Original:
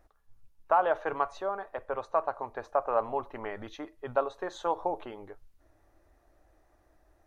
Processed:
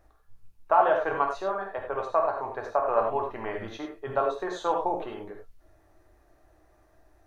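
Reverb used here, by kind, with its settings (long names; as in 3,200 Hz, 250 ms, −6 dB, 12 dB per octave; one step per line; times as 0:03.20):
reverb whose tail is shaped and stops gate 120 ms flat, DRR 0.5 dB
level +1.5 dB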